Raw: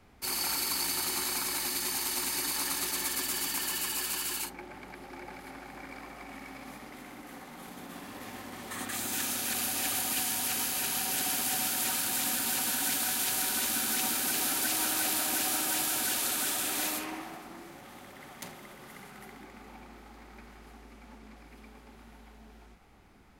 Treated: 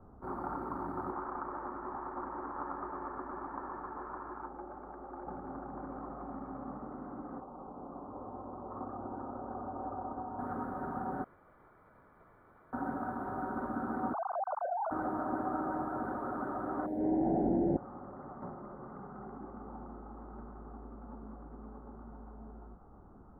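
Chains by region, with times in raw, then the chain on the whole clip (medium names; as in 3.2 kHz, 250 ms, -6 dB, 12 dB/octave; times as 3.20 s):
1.12–5.27 s: low-pass 3.5 kHz 24 dB/octave + peaking EQ 140 Hz -13 dB 1.9 oct + careless resampling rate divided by 8×, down none, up filtered
7.40–10.39 s: low-pass 1.1 kHz 24 dB/octave + peaking EQ 180 Hz -9 dB 1.5 oct
11.24–12.73 s: comb filter that takes the minimum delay 3.5 ms + ladder high-pass 2.2 kHz, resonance 75% + modulation noise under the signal 12 dB
14.13–14.91 s: formants replaced by sine waves + low-pass 1 kHz 24 dB/octave + compression 2:1, threshold -36 dBFS
16.86–17.77 s: Butterworth band-stop 1.2 kHz, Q 0.78 + level flattener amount 100%
whole clip: elliptic low-pass 1.3 kHz, stop band 50 dB; bass shelf 480 Hz +3 dB; trim +2.5 dB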